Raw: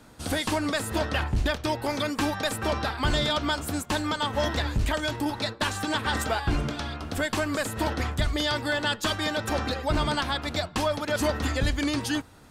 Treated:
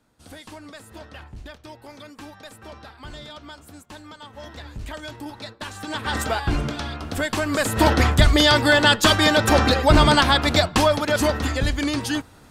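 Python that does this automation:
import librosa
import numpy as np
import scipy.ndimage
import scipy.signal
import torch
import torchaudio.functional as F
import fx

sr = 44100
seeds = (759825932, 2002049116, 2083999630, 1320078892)

y = fx.gain(x, sr, db=fx.line((4.36, -14.0), (4.97, -7.0), (5.68, -7.0), (6.19, 3.0), (7.41, 3.0), (7.86, 11.0), (10.55, 11.0), (11.51, 3.0)))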